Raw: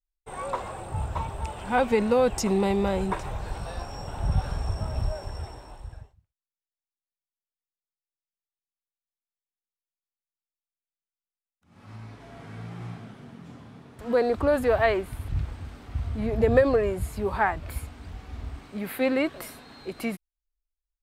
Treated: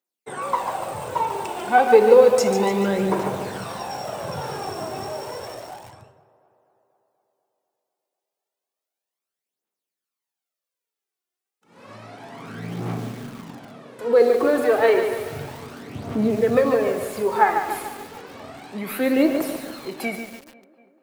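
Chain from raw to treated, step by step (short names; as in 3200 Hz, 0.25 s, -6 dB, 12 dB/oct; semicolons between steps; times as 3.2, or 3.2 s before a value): Bessel high-pass 210 Hz, order 8; bell 400 Hz +5 dB 1.9 oct; in parallel at +0.5 dB: compressor, threshold -35 dBFS, peak gain reduction 22.5 dB; on the sum: phaser 0.31 Hz, delay 2.9 ms, feedback 59%; tape echo 0.245 s, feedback 70%, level -20 dB, low-pass 2700 Hz; reverb RT60 0.65 s, pre-delay 22 ms, DRR 9 dB; lo-fi delay 0.145 s, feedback 55%, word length 6-bit, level -7 dB; gain -1 dB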